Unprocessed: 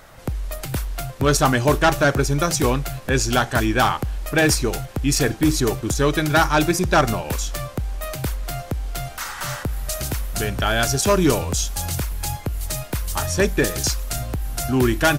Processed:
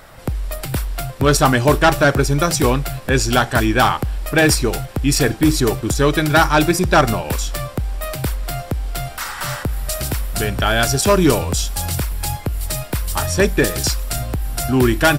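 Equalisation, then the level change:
notch filter 6,400 Hz, Q 8.4
+3.5 dB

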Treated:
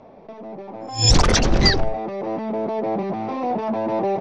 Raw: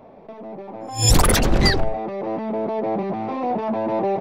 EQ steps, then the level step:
low-pass with resonance 6,000 Hz, resonance Q 3.1
high-frequency loss of the air 76 metres
0.0 dB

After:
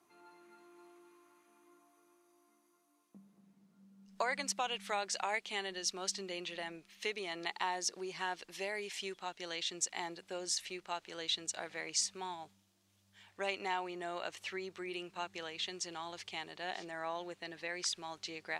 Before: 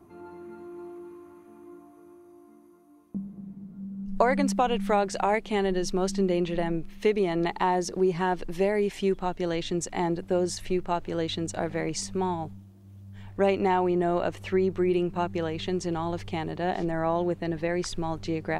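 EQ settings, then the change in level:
resonant band-pass 5,200 Hz, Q 0.69
+1.0 dB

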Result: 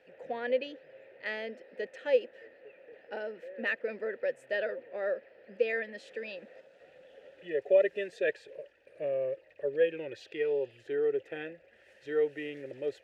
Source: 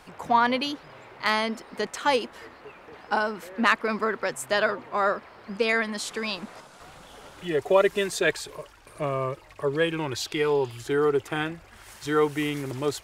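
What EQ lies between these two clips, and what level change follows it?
formant filter e
low-shelf EQ 400 Hz +7.5 dB
0.0 dB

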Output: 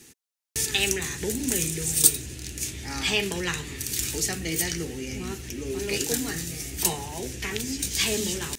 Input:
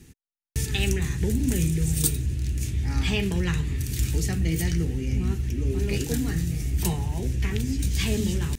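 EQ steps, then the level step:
bass and treble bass −14 dB, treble +9 dB
low-shelf EQ 82 Hz −8 dB
high-shelf EQ 6,300 Hz −7 dB
+4.0 dB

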